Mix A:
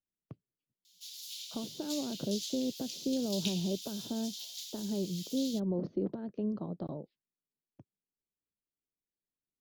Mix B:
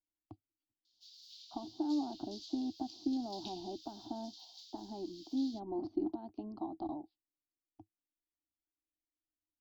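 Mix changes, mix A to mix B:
background -9.5 dB; master: add EQ curve 100 Hz 0 dB, 170 Hz -24 dB, 320 Hz +8 dB, 500 Hz -28 dB, 750 Hz +11 dB, 1700 Hz -17 dB, 4700 Hz +3 dB, 11000 Hz -29 dB, 16000 Hz -13 dB

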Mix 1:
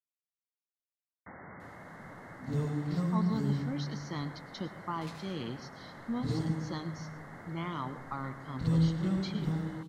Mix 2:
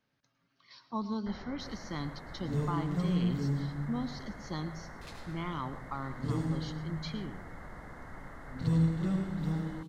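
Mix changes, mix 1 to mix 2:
speech: entry -2.20 s; first sound: remove HPF 96 Hz 24 dB/oct

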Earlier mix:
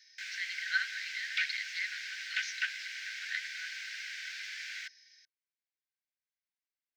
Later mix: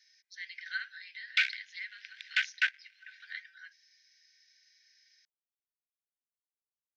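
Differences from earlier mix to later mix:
speech -5.0 dB; first sound: muted; second sound +6.0 dB

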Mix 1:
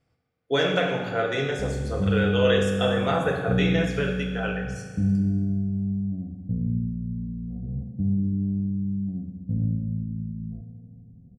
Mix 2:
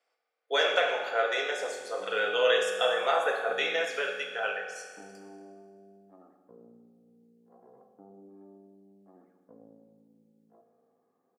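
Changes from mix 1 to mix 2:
background: remove rippled Chebyshev low-pass 750 Hz, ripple 6 dB; master: add HPF 510 Hz 24 dB/oct

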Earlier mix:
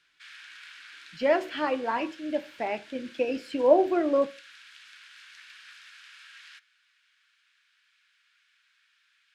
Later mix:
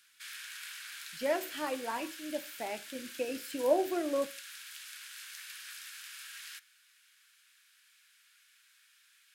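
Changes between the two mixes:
speech -8.0 dB; master: remove LPF 3800 Hz 12 dB/oct

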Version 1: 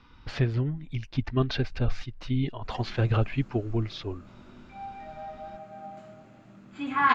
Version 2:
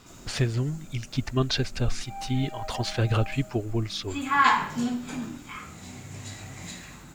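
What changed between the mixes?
background: entry -2.65 s; master: remove air absorption 240 m

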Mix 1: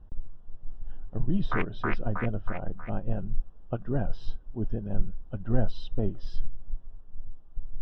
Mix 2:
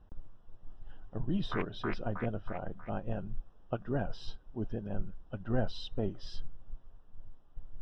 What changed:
speech: add tilt +2 dB/oct; background -8.0 dB

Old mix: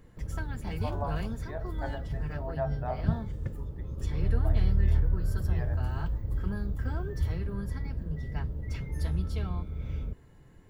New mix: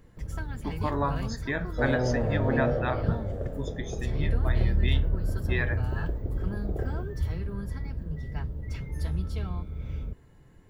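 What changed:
speech: remove band-pass 700 Hz, Q 3.8; second sound: unmuted

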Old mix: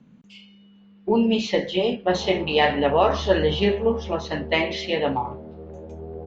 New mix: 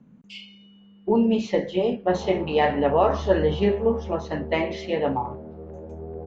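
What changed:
speech: add bell 3700 Hz -10.5 dB 1.8 oct; first sound +6.5 dB

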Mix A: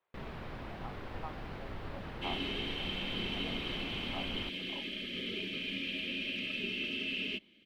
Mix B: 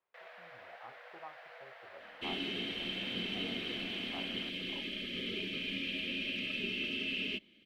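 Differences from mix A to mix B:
speech -4.0 dB; first sound: add rippled Chebyshev high-pass 470 Hz, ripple 9 dB

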